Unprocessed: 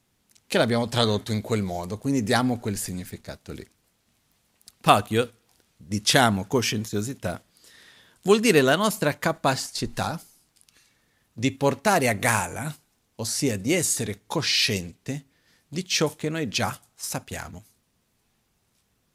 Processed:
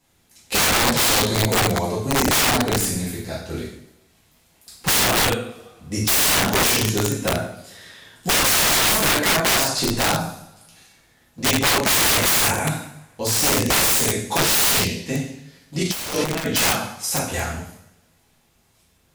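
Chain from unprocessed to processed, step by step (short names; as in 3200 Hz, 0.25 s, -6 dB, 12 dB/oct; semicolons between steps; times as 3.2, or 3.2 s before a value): two-slope reverb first 0.7 s, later 2 s, from -26 dB, DRR -8.5 dB; wrapped overs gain 12.5 dB; 15.81–16.47 negative-ratio compressor -23 dBFS, ratio -0.5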